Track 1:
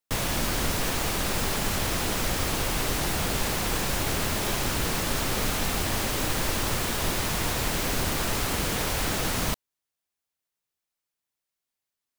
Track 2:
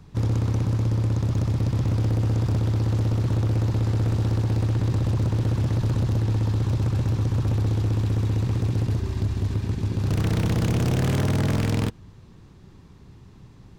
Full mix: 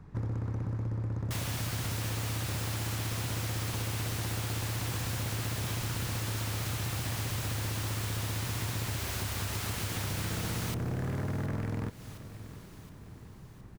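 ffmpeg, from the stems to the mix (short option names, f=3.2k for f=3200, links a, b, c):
-filter_complex "[0:a]highpass=f=800:p=1,adelay=1200,volume=1dB,asplit=2[a][b];[b]volume=-20dB[c];[1:a]highshelf=f=2.4k:t=q:w=1.5:g=-8.5,volume=-3dB,asplit=2[d][e];[e]volume=-23.5dB[f];[c][f]amix=inputs=2:normalize=0,aecho=0:1:717|1434|2151|2868|3585|4302|5019:1|0.51|0.26|0.133|0.0677|0.0345|0.0176[g];[a][d][g]amix=inputs=3:normalize=0,acompressor=threshold=-33dB:ratio=4"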